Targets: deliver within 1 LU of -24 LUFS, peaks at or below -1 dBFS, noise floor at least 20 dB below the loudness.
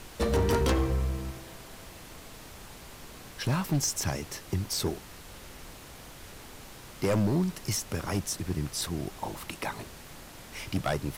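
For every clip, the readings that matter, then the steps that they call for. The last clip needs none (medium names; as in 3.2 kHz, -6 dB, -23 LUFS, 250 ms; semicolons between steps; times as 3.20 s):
clipped samples 1.2%; clipping level -21.0 dBFS; noise floor -48 dBFS; noise floor target -51 dBFS; loudness -30.5 LUFS; peak level -21.0 dBFS; loudness target -24.0 LUFS
-> clip repair -21 dBFS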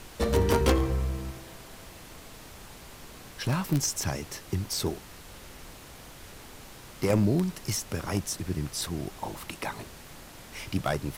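clipped samples 0.0%; noise floor -48 dBFS; noise floor target -50 dBFS
-> noise print and reduce 6 dB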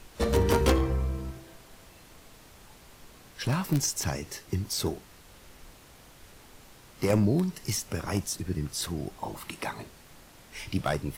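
noise floor -54 dBFS; loudness -29.5 LUFS; peak level -12.0 dBFS; loudness target -24.0 LUFS
-> trim +5.5 dB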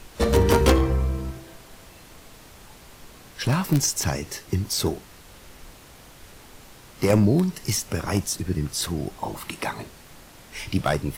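loudness -24.0 LUFS; peak level -6.5 dBFS; noise floor -48 dBFS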